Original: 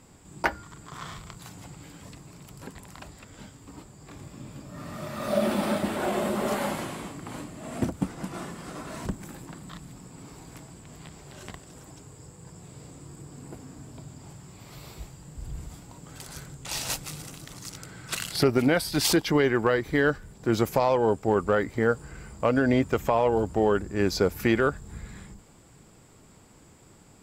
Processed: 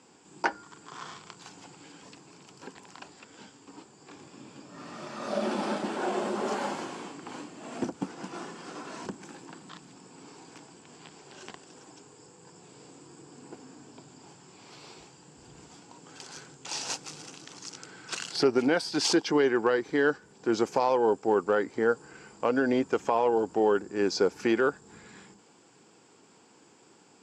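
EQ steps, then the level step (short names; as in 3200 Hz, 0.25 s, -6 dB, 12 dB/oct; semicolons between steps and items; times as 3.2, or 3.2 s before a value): dynamic EQ 2800 Hz, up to -4 dB, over -45 dBFS, Q 1; speaker cabinet 340–6700 Hz, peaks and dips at 610 Hz -9 dB, 1200 Hz -5 dB, 2000 Hz -7 dB, 3800 Hz -5 dB; +2.5 dB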